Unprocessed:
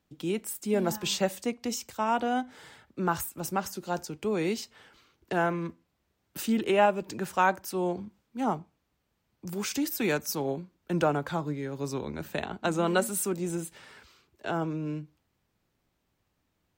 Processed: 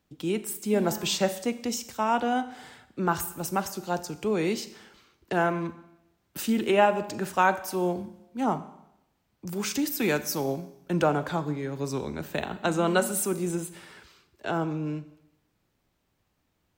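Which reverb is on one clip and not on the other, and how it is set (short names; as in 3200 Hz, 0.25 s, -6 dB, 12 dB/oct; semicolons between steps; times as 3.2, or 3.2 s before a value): Schroeder reverb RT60 0.86 s, combs from 30 ms, DRR 13 dB; gain +2 dB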